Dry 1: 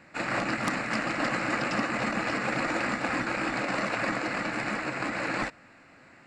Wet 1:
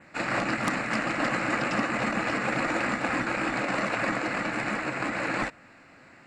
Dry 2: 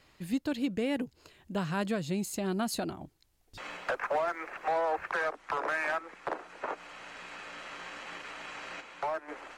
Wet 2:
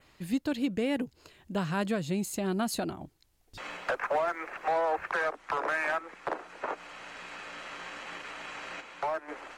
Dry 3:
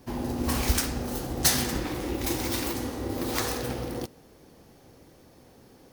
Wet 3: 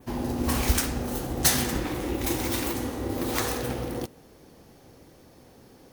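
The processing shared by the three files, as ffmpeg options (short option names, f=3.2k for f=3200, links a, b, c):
-af "adynamicequalizer=threshold=0.002:dfrequency=4900:dqfactor=2.4:tfrequency=4900:tqfactor=2.4:attack=5:release=100:ratio=0.375:range=2:mode=cutabove:tftype=bell,volume=1.5dB"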